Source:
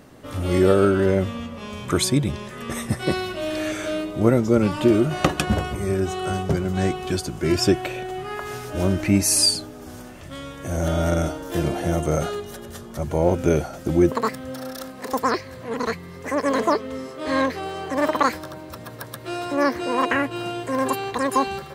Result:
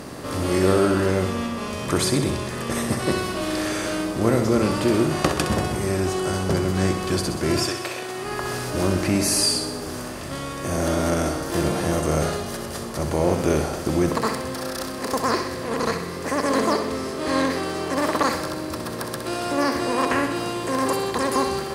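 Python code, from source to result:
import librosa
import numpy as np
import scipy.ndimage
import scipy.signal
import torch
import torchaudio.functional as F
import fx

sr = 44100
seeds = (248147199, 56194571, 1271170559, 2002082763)

p1 = fx.bin_compress(x, sr, power=0.6)
p2 = fx.highpass(p1, sr, hz=fx.line((7.62, 1300.0), (8.24, 330.0)), slope=6, at=(7.62, 8.24), fade=0.02)
p3 = p2 + fx.echo_feedback(p2, sr, ms=64, feedback_pct=59, wet_db=-8.0, dry=0)
y = p3 * librosa.db_to_amplitude(-5.5)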